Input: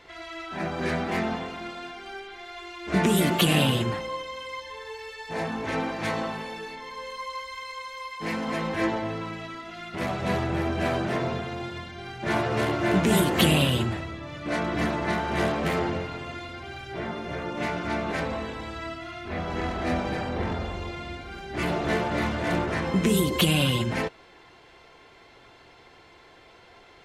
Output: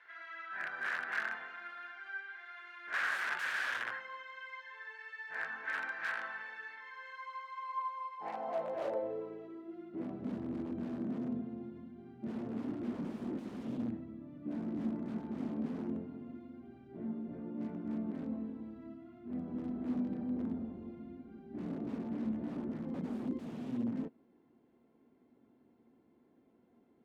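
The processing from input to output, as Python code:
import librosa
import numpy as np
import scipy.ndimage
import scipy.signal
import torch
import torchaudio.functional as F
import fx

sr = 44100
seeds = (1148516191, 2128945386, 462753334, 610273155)

y = (np.mod(10.0 ** (20.0 / 20.0) * x + 1.0, 2.0) - 1.0) / 10.0 ** (20.0 / 20.0)
y = fx.filter_sweep_bandpass(y, sr, from_hz=1600.0, to_hz=240.0, start_s=7.09, end_s=10.33, q=6.7)
y = y * librosa.db_to_amplitude(3.0)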